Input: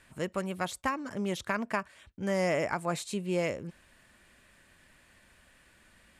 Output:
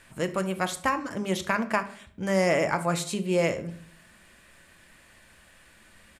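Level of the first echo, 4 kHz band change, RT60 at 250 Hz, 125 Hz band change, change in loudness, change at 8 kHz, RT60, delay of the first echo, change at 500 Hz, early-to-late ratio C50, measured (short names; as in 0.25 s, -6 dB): -20.5 dB, +6.0 dB, 0.85 s, +5.5 dB, +5.5 dB, +6.5 dB, 0.55 s, 71 ms, +5.5 dB, 14.5 dB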